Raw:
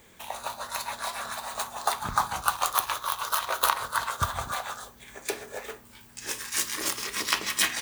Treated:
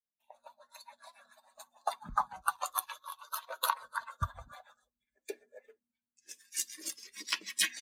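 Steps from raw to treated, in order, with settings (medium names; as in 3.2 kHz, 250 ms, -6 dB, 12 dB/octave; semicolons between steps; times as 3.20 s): expander on every frequency bin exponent 2; resampled via 32 kHz; three bands expanded up and down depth 40%; trim -5 dB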